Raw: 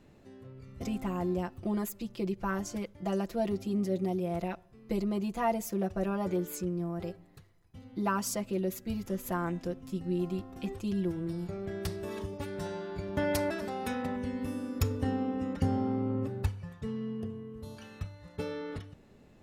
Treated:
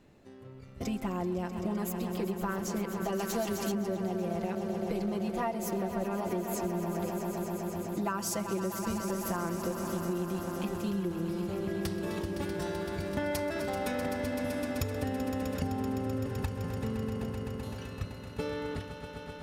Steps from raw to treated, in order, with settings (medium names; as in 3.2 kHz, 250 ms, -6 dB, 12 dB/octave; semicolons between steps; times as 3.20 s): in parallel at -4 dB: crossover distortion -49 dBFS; on the sum: bass shelf 210 Hz -3 dB; echo with a slow build-up 128 ms, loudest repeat 5, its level -12.5 dB; compression, threshold -29 dBFS, peak gain reduction 10 dB; 3.19–3.72 s: treble shelf 2.6 kHz +11.5 dB